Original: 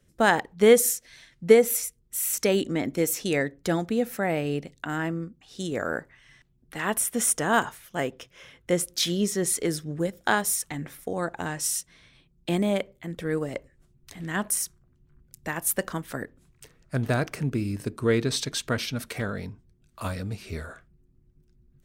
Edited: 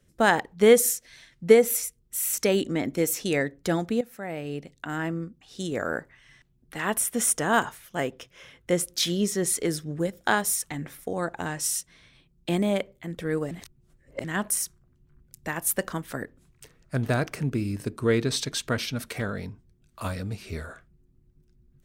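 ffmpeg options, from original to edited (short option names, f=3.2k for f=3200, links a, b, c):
-filter_complex "[0:a]asplit=4[a][b][c][d];[a]atrim=end=4.01,asetpts=PTS-STARTPTS,afade=t=out:st=4.006:d=0.004:c=hsin:silence=0.199526[e];[b]atrim=start=4.01:end=13.512,asetpts=PTS-STARTPTS,afade=t=in:d=1.16:silence=0.199526[f];[c]atrim=start=13.508:end=14.242,asetpts=PTS-STARTPTS,areverse[g];[d]atrim=start=14.238[h];[e][f]concat=n=2:v=0:a=1[i];[i][g]acrossfade=d=0.004:c1=hsin:c2=hsin[j];[j][h]acrossfade=d=0.004:c1=hsin:c2=hsin"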